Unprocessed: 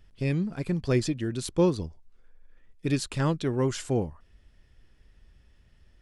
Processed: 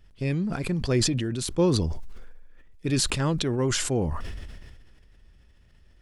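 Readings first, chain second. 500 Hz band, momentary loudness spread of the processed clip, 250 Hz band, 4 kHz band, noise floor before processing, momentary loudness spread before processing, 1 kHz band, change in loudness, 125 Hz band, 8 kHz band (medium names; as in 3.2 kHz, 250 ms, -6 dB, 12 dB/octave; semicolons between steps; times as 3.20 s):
+0.5 dB, 12 LU, +1.5 dB, +9.5 dB, -61 dBFS, 9 LU, +1.5 dB, +2.0 dB, +2.0 dB, +9.5 dB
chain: decay stretcher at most 30 dB/s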